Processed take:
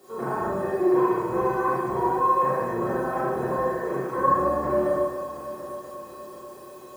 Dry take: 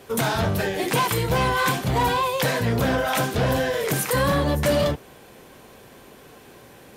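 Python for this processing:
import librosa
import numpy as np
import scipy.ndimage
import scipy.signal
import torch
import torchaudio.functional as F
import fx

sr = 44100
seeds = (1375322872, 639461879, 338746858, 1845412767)

p1 = scipy.signal.sosfilt(scipy.signal.butter(4, 1300.0, 'lowpass', fs=sr, output='sos'), x)
p2 = fx.low_shelf(p1, sr, hz=180.0, db=-10.0)
p3 = fx.hum_notches(p2, sr, base_hz=50, count=5)
p4 = p3 + 0.31 * np.pad(p3, (int(5.4 * sr / 1000.0), 0))[:len(p3)]
p5 = fx.quant_dither(p4, sr, seeds[0], bits=8, dither='triangular')
p6 = p4 + (p5 * 10.0 ** (-5.0 / 20.0))
p7 = fx.comb_fb(p6, sr, f0_hz=360.0, decay_s=0.16, harmonics='odd', damping=0.0, mix_pct=90)
p8 = fx.echo_heads(p7, sr, ms=244, heads='first and third', feedback_pct=60, wet_db=-16)
p9 = fx.rev_schroeder(p8, sr, rt60_s=1.1, comb_ms=29, drr_db=-6.0)
y = p9 * 10.0 ** (4.0 / 20.0)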